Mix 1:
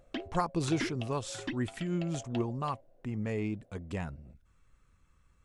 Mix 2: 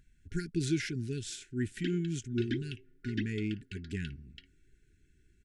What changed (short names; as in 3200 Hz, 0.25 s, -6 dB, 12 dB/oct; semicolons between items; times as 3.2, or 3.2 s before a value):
background: entry +1.70 s; master: add brick-wall FIR band-stop 430–1400 Hz